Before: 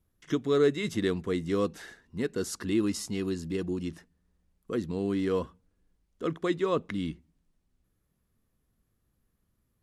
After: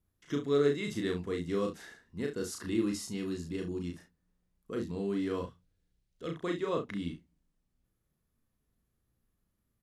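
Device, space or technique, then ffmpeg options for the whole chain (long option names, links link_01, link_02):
slapback doubling: -filter_complex "[0:a]asettb=1/sr,asplit=3[link_01][link_02][link_03];[link_01]atrim=end=5.434[link_04];[link_02]atrim=start=5.43:end=6.3,asetpts=PTS-STARTPTS,afade=type=in:duration=0.004:curve=qsin,afade=type=out:start_time=0.866:duration=0.004:curve=qsin,equalizer=frequency=125:width_type=o:width=1:gain=6,equalizer=frequency=250:width_type=o:width=1:gain=-7,equalizer=frequency=1000:width_type=o:width=1:gain=-6,equalizer=frequency=4000:width_type=o:width=1:gain=5[link_05];[link_03]atrim=start=6.296[link_06];[link_04][link_05]acrossfade=duration=0.004:curve1=hsin:curve2=qsin[link_07];[link_07][link_06]acrossfade=duration=0.004:curve1=qsin:curve2=hsin,asplit=3[link_08][link_09][link_10];[link_09]adelay=35,volume=-3dB[link_11];[link_10]adelay=68,volume=-11.5dB[link_12];[link_08][link_11][link_12]amix=inputs=3:normalize=0,volume=-6dB"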